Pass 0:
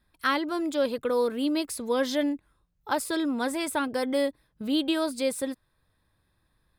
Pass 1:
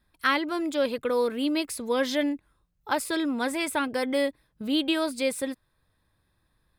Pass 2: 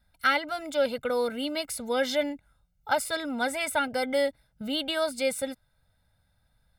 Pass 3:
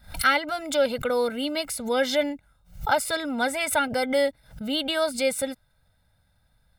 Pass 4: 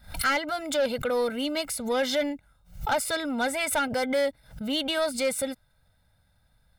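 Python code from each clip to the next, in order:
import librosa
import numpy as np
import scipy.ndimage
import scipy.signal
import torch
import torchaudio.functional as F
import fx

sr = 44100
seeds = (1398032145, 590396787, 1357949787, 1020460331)

y1 = fx.dynamic_eq(x, sr, hz=2300.0, q=1.7, threshold_db=-48.0, ratio=4.0, max_db=6)
y2 = y1 + 0.97 * np.pad(y1, (int(1.4 * sr / 1000.0), 0))[:len(y1)]
y2 = y2 * 10.0 ** (-2.5 / 20.0)
y3 = fx.pre_swell(y2, sr, db_per_s=150.0)
y3 = y3 * 10.0 ** (3.0 / 20.0)
y4 = 10.0 ** (-19.0 / 20.0) * np.tanh(y3 / 10.0 ** (-19.0 / 20.0))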